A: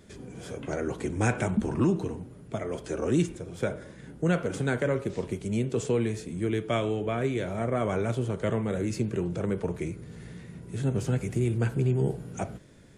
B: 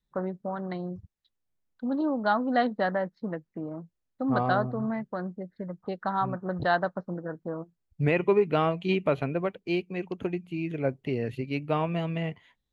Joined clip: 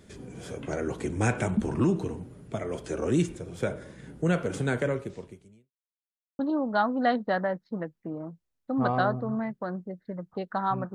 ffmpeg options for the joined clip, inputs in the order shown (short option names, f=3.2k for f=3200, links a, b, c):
-filter_complex "[0:a]apad=whole_dur=10.94,atrim=end=10.94,asplit=2[a][b];[a]atrim=end=5.72,asetpts=PTS-STARTPTS,afade=t=out:st=4.83:d=0.89:c=qua[c];[b]atrim=start=5.72:end=6.39,asetpts=PTS-STARTPTS,volume=0[d];[1:a]atrim=start=1.9:end=6.45,asetpts=PTS-STARTPTS,afade=t=in:d=0.004:c=hsin[e];[c][d][e]concat=n=3:v=0:a=1"